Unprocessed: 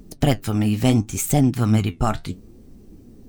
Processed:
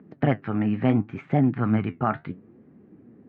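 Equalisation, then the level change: high-pass 120 Hz 24 dB/octave; four-pole ladder low-pass 2.2 kHz, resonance 40%; distance through air 150 m; +5.5 dB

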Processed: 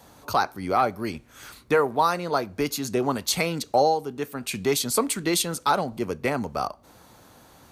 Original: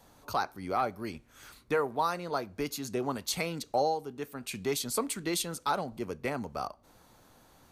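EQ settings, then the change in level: high-pass 47 Hz; +8.0 dB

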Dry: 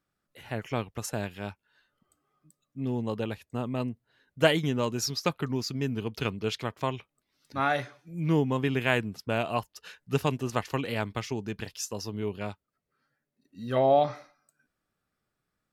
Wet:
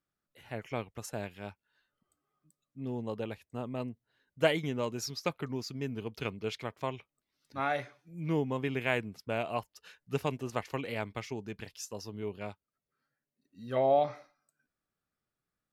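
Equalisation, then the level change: dynamic bell 570 Hz, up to +4 dB, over -38 dBFS, Q 0.93; dynamic bell 2.2 kHz, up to +7 dB, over -53 dBFS, Q 5.5; -7.5 dB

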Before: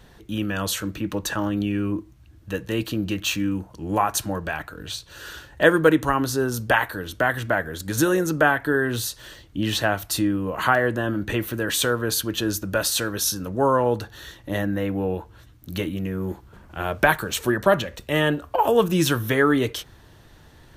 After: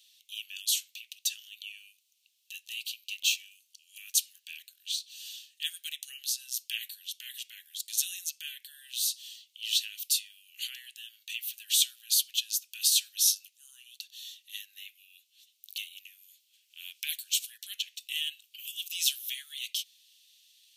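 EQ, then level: steep high-pass 2.7 kHz 48 dB/octave; 0.0 dB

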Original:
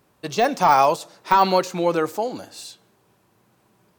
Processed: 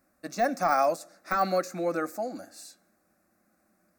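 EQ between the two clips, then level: static phaser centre 630 Hz, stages 8; -4.5 dB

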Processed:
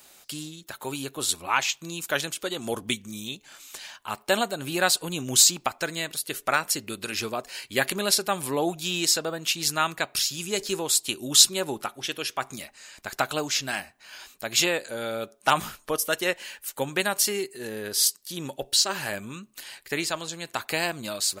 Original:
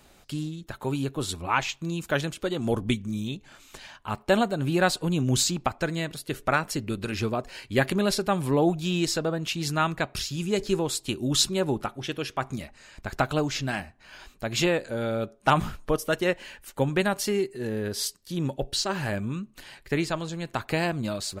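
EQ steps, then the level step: RIAA curve recording; treble shelf 7.3 kHz -4 dB; 0.0 dB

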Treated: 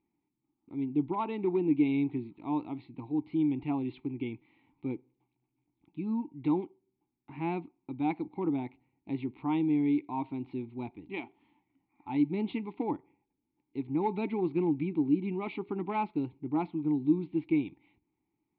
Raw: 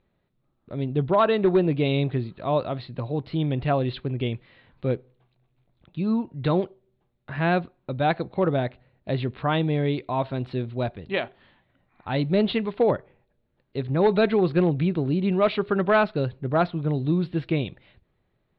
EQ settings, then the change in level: vowel filter u; bass shelf 100 Hz +10 dB; +3.0 dB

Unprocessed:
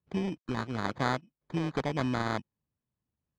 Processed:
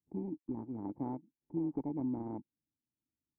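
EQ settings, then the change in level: cascade formant filter u; +2.0 dB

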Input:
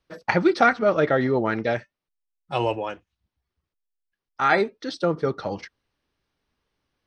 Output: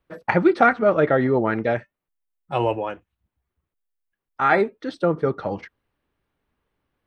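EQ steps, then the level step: peaking EQ 5.3 kHz -14.5 dB 1.2 oct; +2.5 dB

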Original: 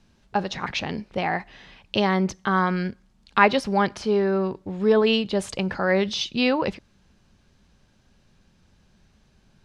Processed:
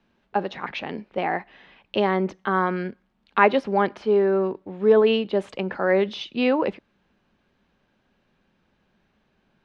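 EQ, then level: dynamic bell 370 Hz, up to +5 dB, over -31 dBFS, Q 0.73; three-band isolator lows -13 dB, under 200 Hz, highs -19 dB, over 4 kHz; peaking EQ 4.8 kHz -3.5 dB 0.77 oct; -1.5 dB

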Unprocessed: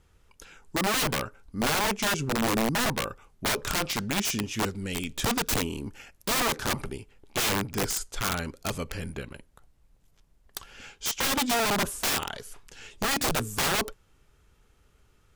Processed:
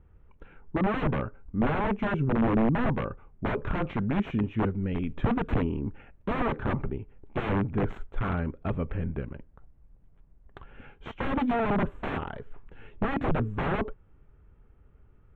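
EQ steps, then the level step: boxcar filter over 9 samples; distance through air 460 m; bass shelf 360 Hz +6.5 dB; 0.0 dB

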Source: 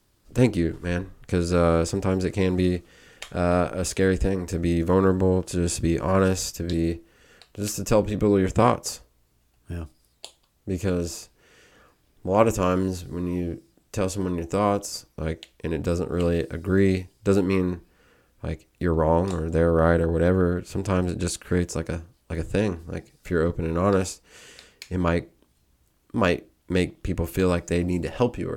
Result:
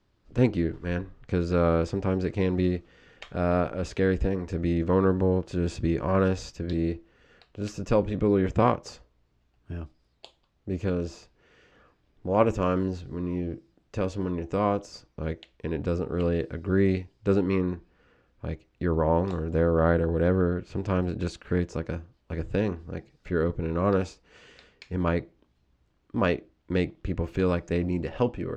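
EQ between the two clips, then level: distance through air 170 m; -2.5 dB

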